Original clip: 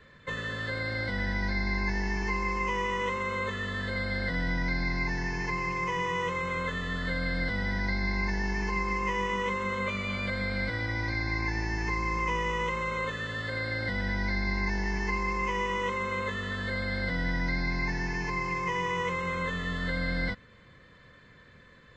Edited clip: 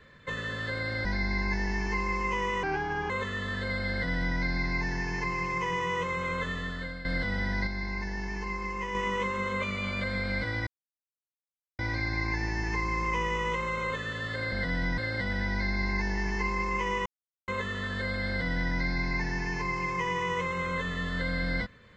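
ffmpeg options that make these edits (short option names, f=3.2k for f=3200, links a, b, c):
-filter_complex "[0:a]asplit=12[a][b][c][d][e][f][g][h][i][j][k][l];[a]atrim=end=1.052[m];[b]atrim=start=1.408:end=2.994[n];[c]atrim=start=2.99:end=3.36,asetpts=PTS-STARTPTS,asetrate=34839,aresample=44100,atrim=end_sample=20654,asetpts=PTS-STARTPTS[o];[d]atrim=start=3.356:end=7.31,asetpts=PTS-STARTPTS,afade=t=out:st=3.414:d=0.54:silence=0.237137[p];[e]atrim=start=7.31:end=7.932,asetpts=PTS-STARTPTS,afade=t=in:d=0.004:c=hsin:silence=0.237137[q];[f]atrim=start=7.928:end=9.212,asetpts=PTS-STARTPTS,volume=-4.5dB[r];[g]atrim=start=9.208:end=10.93,asetpts=PTS-STARTPTS,afade=t=out:st=1.718:d=0.004:c=hsin,apad=pad_dur=1.12[s];[h]atrim=start=10.93:end=13.662,asetpts=PTS-STARTPTS,afade=t=in:d=0.004:c=hsin[t];[i]atrim=start=4.168:end=4.632[u];[j]atrim=start=13.658:end=15.74,asetpts=PTS-STARTPTS,afade=t=out:st=2.078:d=0.004:c=hsin[v];[k]atrim=start=15.74:end=16.16,asetpts=PTS-STARTPTS,volume=0[w];[l]atrim=start=16.16,asetpts=PTS-STARTPTS,afade=t=in:d=0.004:c=hsin[x];[m][n]acrossfade=d=0.004:c1=hsin:c2=hsin[y];[y][o]acrossfade=d=0.004:c1=hsin:c2=hsin[z];[p][q]concat=n=2:v=0:a=1[aa];[z][aa]acrossfade=d=0.004:c1=hsin:c2=hsin[ab];[ab][r]acrossfade=d=0.004:c1=hsin:c2=hsin[ac];[s][t]concat=n=2:v=0:a=1[ad];[ac][ad]acrossfade=d=0.004:c1=hsin:c2=hsin[ae];[ae][u]acrossfade=d=0.004:c1=hsin:c2=hsin[af];[v][w][x]concat=n=3:v=0:a=1[ag];[af][ag]acrossfade=d=0.004:c1=hsin:c2=hsin"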